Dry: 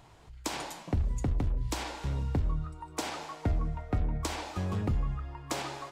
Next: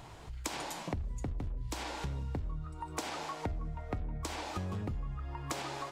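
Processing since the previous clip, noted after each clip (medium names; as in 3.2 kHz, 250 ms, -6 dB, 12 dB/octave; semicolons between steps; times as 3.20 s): compression 5:1, threshold -42 dBFS, peak gain reduction 15.5 dB; trim +6 dB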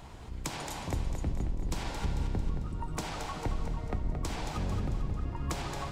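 octave divider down 1 oct, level +4 dB; two-band feedback delay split 320 Hz, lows 376 ms, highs 223 ms, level -7 dB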